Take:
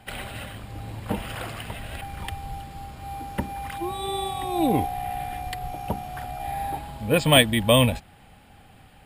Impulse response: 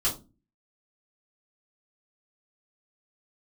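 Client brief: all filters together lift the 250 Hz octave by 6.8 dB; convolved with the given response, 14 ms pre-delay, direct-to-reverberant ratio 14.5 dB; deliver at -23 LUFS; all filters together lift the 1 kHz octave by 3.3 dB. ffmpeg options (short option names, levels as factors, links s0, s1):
-filter_complex "[0:a]equalizer=f=250:t=o:g=8,equalizer=f=1000:t=o:g=4,asplit=2[s0][s1];[1:a]atrim=start_sample=2205,adelay=14[s2];[s1][s2]afir=irnorm=-1:irlink=0,volume=0.075[s3];[s0][s3]amix=inputs=2:normalize=0,volume=0.891"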